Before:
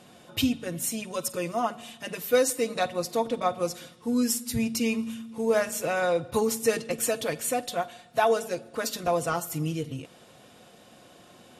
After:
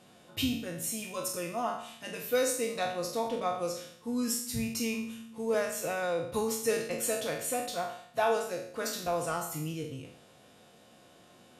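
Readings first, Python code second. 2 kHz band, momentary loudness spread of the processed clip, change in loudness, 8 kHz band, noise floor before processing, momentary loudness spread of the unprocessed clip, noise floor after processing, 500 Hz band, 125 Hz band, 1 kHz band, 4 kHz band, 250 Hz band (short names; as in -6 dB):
-4.5 dB, 9 LU, -5.0 dB, -3.5 dB, -54 dBFS, 9 LU, -58 dBFS, -5.0 dB, -5.5 dB, -4.5 dB, -3.5 dB, -6.0 dB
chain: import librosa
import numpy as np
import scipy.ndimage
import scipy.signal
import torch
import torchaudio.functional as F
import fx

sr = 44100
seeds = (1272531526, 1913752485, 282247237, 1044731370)

y = fx.spec_trails(x, sr, decay_s=0.62)
y = F.gain(torch.from_numpy(y), -7.0).numpy()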